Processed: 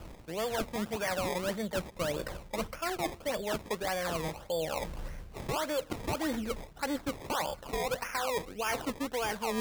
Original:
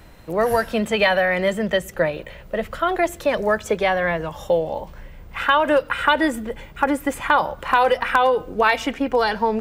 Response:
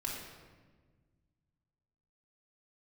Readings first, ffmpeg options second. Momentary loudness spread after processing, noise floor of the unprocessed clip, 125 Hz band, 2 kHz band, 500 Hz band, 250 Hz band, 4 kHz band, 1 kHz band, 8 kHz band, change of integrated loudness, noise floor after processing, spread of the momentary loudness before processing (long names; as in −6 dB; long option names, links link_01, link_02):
5 LU, −42 dBFS, −7.5 dB, −16.0 dB, −14.0 dB, −11.5 dB, −10.0 dB, −15.5 dB, −1.5 dB, −14.0 dB, −51 dBFS, 10 LU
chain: -af "areverse,acompressor=threshold=-32dB:ratio=5,areverse,acrusher=samples=21:mix=1:aa=0.000001:lfo=1:lforange=21:lforate=1.7"